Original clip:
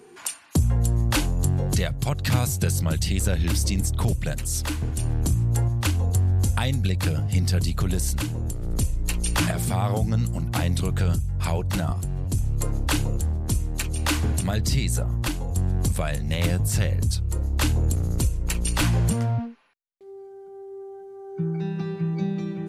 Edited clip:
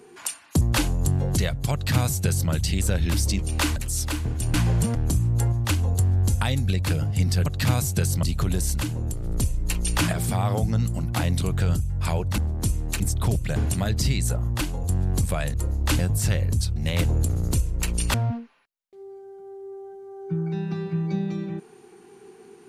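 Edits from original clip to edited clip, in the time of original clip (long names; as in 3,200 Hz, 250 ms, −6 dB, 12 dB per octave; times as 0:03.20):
0:00.61–0:00.99: remove
0:02.11–0:02.88: duplicate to 0:07.62
0:03.77–0:04.33: swap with 0:13.86–0:14.23
0:11.77–0:13.24: remove
0:16.21–0:16.49: swap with 0:17.26–0:17.71
0:18.81–0:19.22: move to 0:05.11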